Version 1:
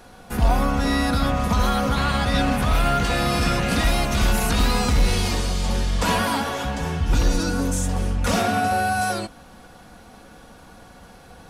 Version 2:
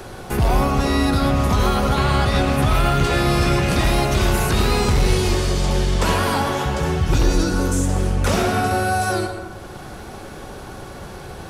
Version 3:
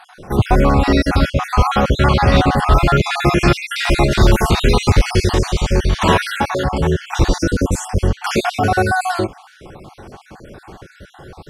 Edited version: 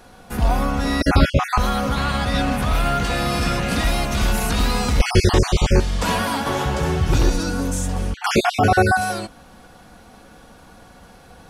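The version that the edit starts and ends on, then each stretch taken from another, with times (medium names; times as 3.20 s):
1
1.01–1.58 s: from 3
5.00–5.80 s: from 3
6.46–7.30 s: from 2
8.14–8.97 s: from 3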